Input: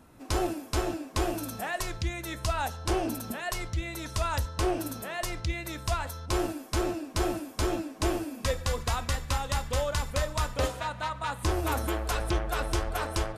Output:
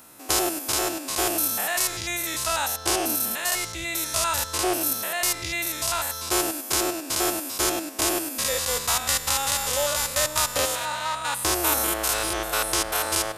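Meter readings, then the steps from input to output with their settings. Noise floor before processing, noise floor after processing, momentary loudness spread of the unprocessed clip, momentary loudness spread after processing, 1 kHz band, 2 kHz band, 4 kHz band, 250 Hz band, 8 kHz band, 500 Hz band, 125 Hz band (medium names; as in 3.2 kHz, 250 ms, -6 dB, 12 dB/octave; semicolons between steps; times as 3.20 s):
-46 dBFS, -36 dBFS, 4 LU, 3 LU, +5.0 dB, +7.5 dB, +11.0 dB, +1.0 dB, +15.5 dB, +3.0 dB, -8.0 dB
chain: spectrogram pixelated in time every 100 ms; RIAA curve recording; trim +7.5 dB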